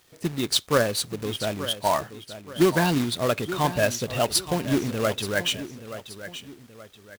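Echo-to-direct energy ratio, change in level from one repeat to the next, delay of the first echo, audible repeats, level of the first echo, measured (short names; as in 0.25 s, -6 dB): -12.5 dB, -8.0 dB, 0.877 s, 2, -13.0 dB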